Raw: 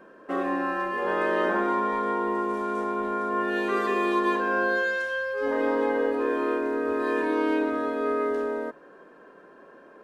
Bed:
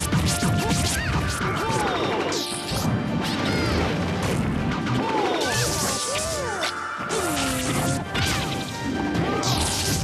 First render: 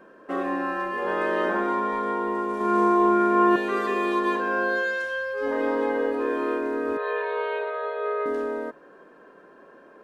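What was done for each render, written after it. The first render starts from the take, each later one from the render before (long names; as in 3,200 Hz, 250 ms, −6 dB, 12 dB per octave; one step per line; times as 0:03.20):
0:02.56–0:03.56: flutter between parallel walls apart 7.3 metres, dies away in 1.4 s
0:04.38–0:05.04: high-pass filter 140 Hz
0:06.97–0:08.26: linear-phase brick-wall band-pass 390–4,400 Hz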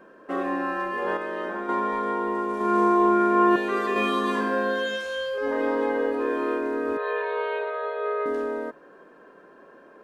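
0:01.17–0:01.69: clip gain −6.5 dB
0:03.94–0:05.38: flutter between parallel walls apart 3.2 metres, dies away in 0.66 s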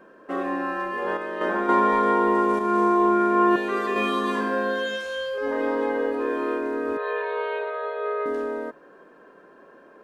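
0:01.41–0:02.59: clip gain +6.5 dB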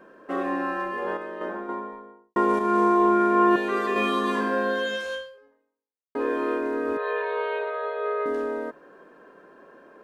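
0:00.59–0:02.36: fade out and dull
0:05.14–0:06.15: fade out exponential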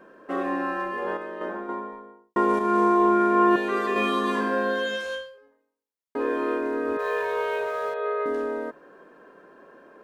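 0:06.99–0:07.94: mu-law and A-law mismatch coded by mu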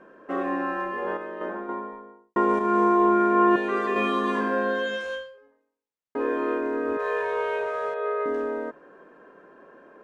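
low-pass filter 6,600 Hz 12 dB per octave
parametric band 4,400 Hz −6 dB 0.86 octaves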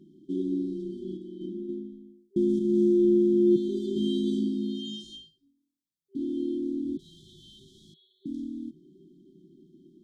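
brick-wall band-stop 390–3,100 Hz
parametric band 160 Hz +11.5 dB 0.58 octaves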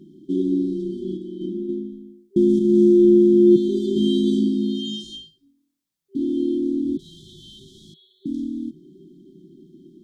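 level +8 dB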